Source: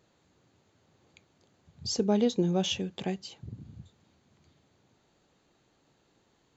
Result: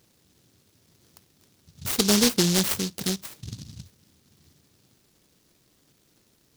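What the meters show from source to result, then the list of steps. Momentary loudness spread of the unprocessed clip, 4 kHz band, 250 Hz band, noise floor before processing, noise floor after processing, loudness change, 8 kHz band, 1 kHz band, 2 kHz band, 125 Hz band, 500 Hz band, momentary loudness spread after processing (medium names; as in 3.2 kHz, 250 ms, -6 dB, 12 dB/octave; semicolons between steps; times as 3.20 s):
20 LU, +9.0 dB, +4.0 dB, -70 dBFS, -65 dBFS, +7.0 dB, no reading, +3.0 dB, +12.0 dB, +4.5 dB, +1.0 dB, 21 LU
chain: delay time shaken by noise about 4.7 kHz, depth 0.36 ms; trim +5 dB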